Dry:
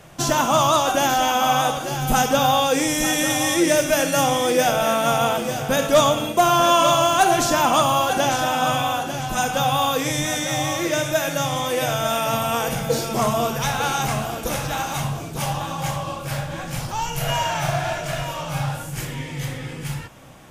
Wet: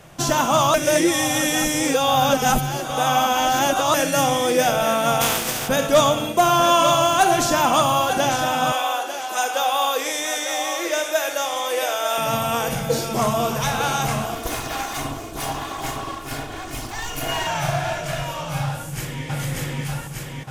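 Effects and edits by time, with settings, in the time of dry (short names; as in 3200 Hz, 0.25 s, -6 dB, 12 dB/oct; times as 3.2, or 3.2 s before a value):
0.74–3.94 reverse
5.2–5.67 spectral contrast lowered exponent 0.42
8.72–12.18 HPF 370 Hz 24 dB/oct
13.06–13.49 echo throw 0.33 s, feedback 75%, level -10.5 dB
14.35–17.47 minimum comb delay 2.8 ms
18.7–19.25 echo throw 0.59 s, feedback 70%, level 0 dB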